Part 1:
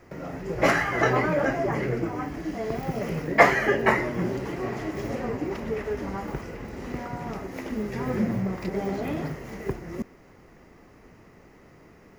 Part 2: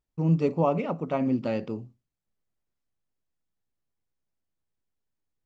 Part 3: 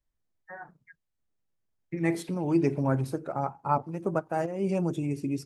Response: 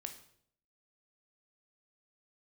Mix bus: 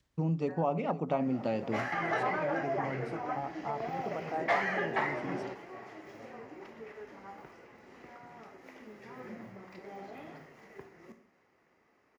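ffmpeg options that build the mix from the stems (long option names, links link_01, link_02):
-filter_complex "[0:a]asplit=2[link_01][link_02];[link_02]highpass=frequency=720:poles=1,volume=16dB,asoftclip=type=tanh:threshold=-1dB[link_03];[link_01][link_03]amix=inputs=2:normalize=0,lowpass=frequency=5200:poles=1,volume=-6dB,adelay=1100,volume=-17dB,asplit=2[link_04][link_05];[link_05]volume=-5dB[link_06];[1:a]acompressor=threshold=-29dB:ratio=4,volume=0dB,asplit=2[link_07][link_08];[link_08]volume=-17dB[link_09];[2:a]acompressor=mode=upward:threshold=-38dB:ratio=2.5,volume=-10dB,asplit=2[link_10][link_11];[link_11]apad=whole_len=585680[link_12];[link_04][link_12]sidechaingate=range=-18dB:threshold=-59dB:ratio=16:detection=peak[link_13];[link_13][link_10]amix=inputs=2:normalize=0,lowpass=6000,alimiter=level_in=4dB:limit=-24dB:level=0:latency=1:release=117,volume=-4dB,volume=0dB[link_14];[3:a]atrim=start_sample=2205[link_15];[link_06][link_15]afir=irnorm=-1:irlink=0[link_16];[link_09]aecho=0:1:510:1[link_17];[link_07][link_14][link_16][link_17]amix=inputs=4:normalize=0,highpass=69,adynamicequalizer=threshold=0.00251:dfrequency=760:dqfactor=3.5:tfrequency=760:tqfactor=3.5:attack=5:release=100:ratio=0.375:range=3.5:mode=boostabove:tftype=bell"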